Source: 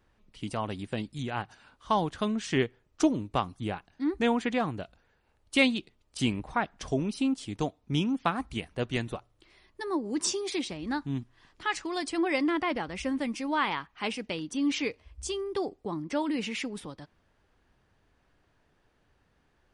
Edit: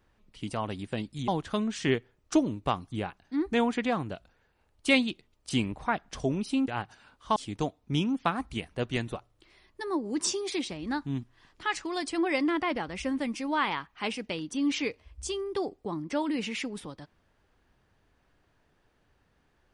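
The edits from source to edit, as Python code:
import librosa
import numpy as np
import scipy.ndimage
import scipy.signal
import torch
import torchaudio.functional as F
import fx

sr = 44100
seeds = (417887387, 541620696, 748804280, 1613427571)

y = fx.edit(x, sr, fx.move(start_s=1.28, length_s=0.68, to_s=7.36), tone=tone)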